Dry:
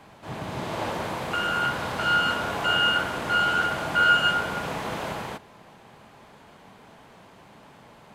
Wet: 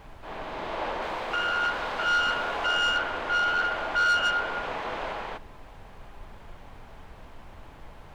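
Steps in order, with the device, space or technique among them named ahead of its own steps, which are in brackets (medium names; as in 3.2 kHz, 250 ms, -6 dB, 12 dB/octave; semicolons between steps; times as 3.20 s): aircraft cabin announcement (band-pass 380–3500 Hz; saturation -18.5 dBFS, distortion -15 dB; brown noise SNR 15 dB); 1.02–2.67 s: treble shelf 4.7 kHz +5.5 dB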